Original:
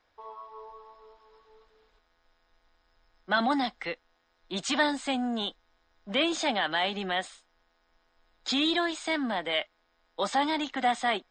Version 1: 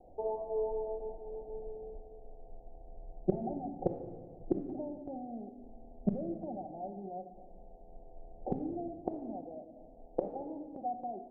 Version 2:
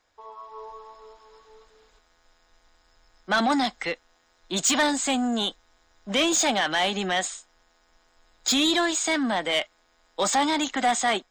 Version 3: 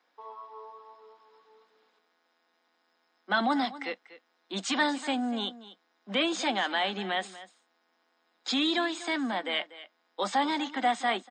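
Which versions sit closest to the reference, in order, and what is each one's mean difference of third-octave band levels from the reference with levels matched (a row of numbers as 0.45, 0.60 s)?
3, 2, 1; 2.0, 3.5, 16.5 dB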